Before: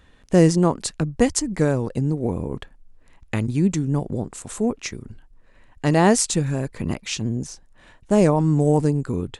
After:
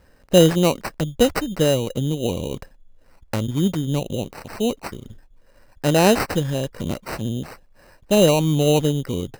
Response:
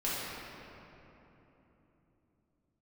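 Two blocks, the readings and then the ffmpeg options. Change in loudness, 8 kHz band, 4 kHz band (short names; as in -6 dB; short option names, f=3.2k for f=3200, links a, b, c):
+1.0 dB, -2.5 dB, +7.0 dB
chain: -af "equalizer=f=550:t=o:w=0.39:g=8.5,acrusher=samples=13:mix=1:aa=0.000001,volume=-1dB"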